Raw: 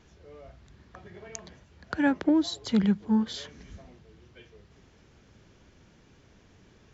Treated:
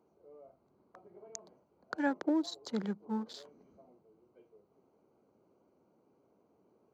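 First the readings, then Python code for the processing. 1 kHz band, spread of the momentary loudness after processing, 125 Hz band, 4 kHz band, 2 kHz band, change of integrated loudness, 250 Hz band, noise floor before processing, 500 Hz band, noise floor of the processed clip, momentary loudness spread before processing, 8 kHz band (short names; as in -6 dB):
-5.0 dB, 17 LU, -14.0 dB, -10.0 dB, -7.5 dB, -10.0 dB, -10.0 dB, -59 dBFS, -5.5 dB, -72 dBFS, 18 LU, n/a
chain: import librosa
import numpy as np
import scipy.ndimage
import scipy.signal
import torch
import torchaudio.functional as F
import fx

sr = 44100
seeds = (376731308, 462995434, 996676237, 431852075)

y = fx.wiener(x, sr, points=25)
y = scipy.signal.sosfilt(scipy.signal.butter(2, 350.0, 'highpass', fs=sr, output='sos'), y)
y = fx.peak_eq(y, sr, hz=2700.0, db=-10.5, octaves=0.82)
y = y * librosa.db_to_amplitude(-3.5)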